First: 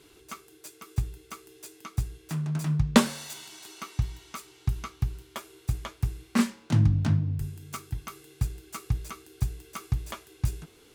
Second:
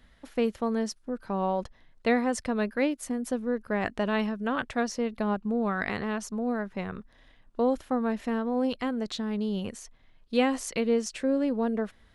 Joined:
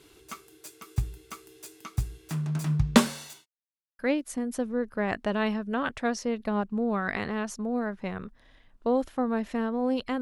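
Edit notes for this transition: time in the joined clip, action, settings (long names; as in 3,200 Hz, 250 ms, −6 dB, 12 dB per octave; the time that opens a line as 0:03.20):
first
0:03.04–0:03.46: fade out equal-power
0:03.46–0:03.99: silence
0:03.99: continue with second from 0:02.72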